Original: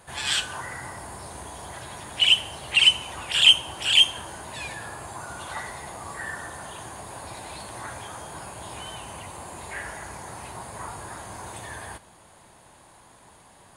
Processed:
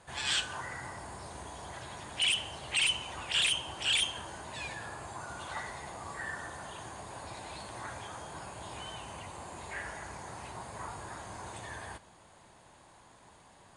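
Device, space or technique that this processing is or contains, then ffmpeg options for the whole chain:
synthesiser wavefolder: -af "aeval=exprs='0.15*(abs(mod(val(0)/0.15+3,4)-2)-1)':channel_layout=same,lowpass=frequency=8600:width=0.5412,lowpass=frequency=8600:width=1.3066,volume=-5dB"

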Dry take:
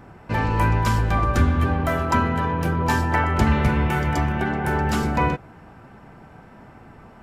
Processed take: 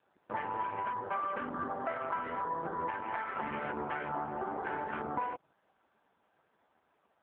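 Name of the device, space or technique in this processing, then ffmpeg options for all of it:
voicemail: -filter_complex "[0:a]asplit=3[link_01][link_02][link_03];[link_01]afade=type=out:start_time=1.65:duration=0.02[link_04];[link_02]lowpass=6300,afade=type=in:start_time=1.65:duration=0.02,afade=type=out:start_time=3.78:duration=0.02[link_05];[link_03]afade=type=in:start_time=3.78:duration=0.02[link_06];[link_04][link_05][link_06]amix=inputs=3:normalize=0,afwtdn=0.0447,highpass=400,lowpass=3200,acompressor=threshold=-27dB:ratio=8,volume=-3dB" -ar 8000 -c:a libopencore_amrnb -b:a 5150

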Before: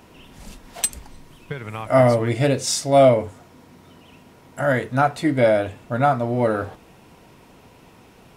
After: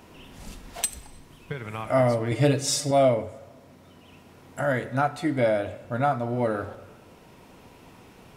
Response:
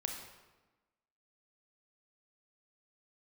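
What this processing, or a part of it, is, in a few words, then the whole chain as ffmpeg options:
ducked reverb: -filter_complex "[0:a]asplit=3[link_01][link_02][link_03];[1:a]atrim=start_sample=2205[link_04];[link_02][link_04]afir=irnorm=-1:irlink=0[link_05];[link_03]apad=whole_len=369027[link_06];[link_05][link_06]sidechaincompress=threshold=-25dB:ratio=8:attack=16:release=1240,volume=2dB[link_07];[link_01][link_07]amix=inputs=2:normalize=0,asettb=1/sr,asplit=3[link_08][link_09][link_10];[link_08]atrim=end=2.314[link_11];[link_09]atrim=start=2.31:end=2.91,asetpts=PTS-STARTPTS,afade=type=in:duration=0.004:curve=qsin,afade=type=out:start_time=0.596:duration=0.004:curve=qsin,aecho=1:1:6.6:0.95,atrim=end_sample=26460[link_12];[link_10]atrim=start=2.906[link_13];[link_11][link_12]acrossfade=duration=0.004:curve1=hsin:curve2=qsin[link_14];[link_14][link_13]acrossfade=duration=0.004:curve1=qsin:curve2=hsin,volume=-8dB"

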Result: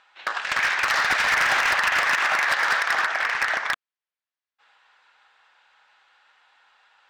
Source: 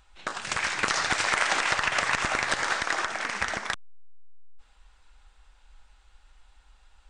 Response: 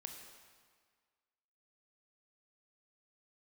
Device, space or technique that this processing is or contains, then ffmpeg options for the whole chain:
megaphone: -filter_complex "[0:a]highpass=670,lowpass=3600,equalizer=frequency=1700:width_type=o:width=0.4:gain=4,asoftclip=type=hard:threshold=-23.5dB,asettb=1/sr,asplit=3[link_01][link_02][link_03];[link_01]atrim=end=2.074[link_04];[link_02]atrim=start=2.07:end=3.12,asetpts=PTS-STARTPTS,afade=type=in:duration=0.004:curve=qsin,afade=type=out:start_time=1.046:duration=0.004:curve=qsin,highpass=frequency=170:poles=1[link_05];[link_03]atrim=start=3.116[link_06];[link_04][link_05]acrossfade=duration=0.004:curve1=hsin:curve2=qsin[link_07];[link_07][link_06]acrossfade=duration=0.004:curve1=qsin:curve2=hsin,volume=7dB"

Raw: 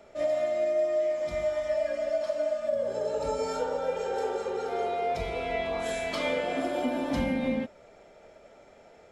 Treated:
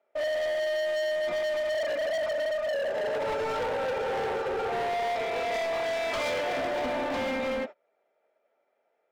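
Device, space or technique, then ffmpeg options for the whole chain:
walkie-talkie: -filter_complex "[0:a]asettb=1/sr,asplit=3[link_01][link_02][link_03];[link_01]atrim=end=0.964[link_04];[link_02]atrim=start=0.96:end=2.36,asetpts=PTS-STARTPTS,afade=type=in:duration=0.004:curve=qsin,afade=type=out:start_time=1.396:duration=0.004:curve=qsin,lowshelf=frequency=440:gain=6[link_05];[link_03]atrim=start=2.356[link_06];[link_04][link_05]acrossfade=duration=0.004:curve1=hsin:curve2=qsin[link_07];[link_07][link_06]acrossfade=duration=0.004:curve1=qsin:curve2=hsin,highpass=450,lowpass=2700,asoftclip=type=hard:threshold=-35.5dB,agate=range=-26dB:threshold=-46dB:ratio=16:detection=peak,volume=8dB"

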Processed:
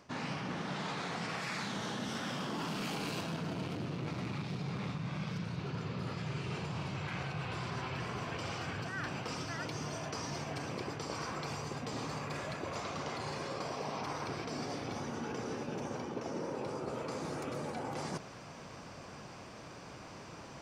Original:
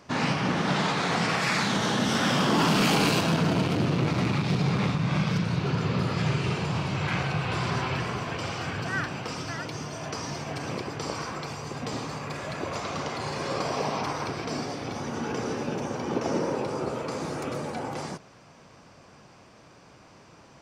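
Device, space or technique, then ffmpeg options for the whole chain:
compression on the reversed sound: -af "areverse,acompressor=threshold=-40dB:ratio=8,areverse,volume=3.5dB"

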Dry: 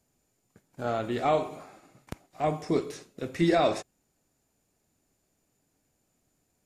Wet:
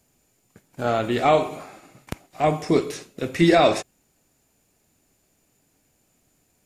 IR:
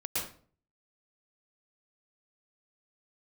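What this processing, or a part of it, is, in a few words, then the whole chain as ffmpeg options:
presence and air boost: -af "equalizer=frequency=2600:width_type=o:width=0.92:gain=3.5,highshelf=frequency=9200:gain=4.5,volume=7dB"

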